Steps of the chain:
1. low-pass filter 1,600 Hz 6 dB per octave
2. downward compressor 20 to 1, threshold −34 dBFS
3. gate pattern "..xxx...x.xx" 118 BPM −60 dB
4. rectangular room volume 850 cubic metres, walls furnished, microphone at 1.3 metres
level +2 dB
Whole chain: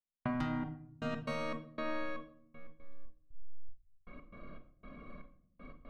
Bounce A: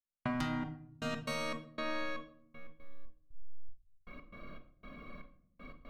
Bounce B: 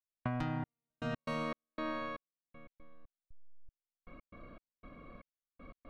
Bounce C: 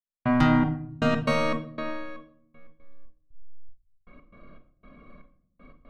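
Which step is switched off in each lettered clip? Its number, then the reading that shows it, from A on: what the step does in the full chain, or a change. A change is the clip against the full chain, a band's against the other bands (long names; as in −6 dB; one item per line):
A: 1, 4 kHz band +7.0 dB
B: 4, echo-to-direct ratio −5.5 dB to none audible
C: 2, average gain reduction 4.0 dB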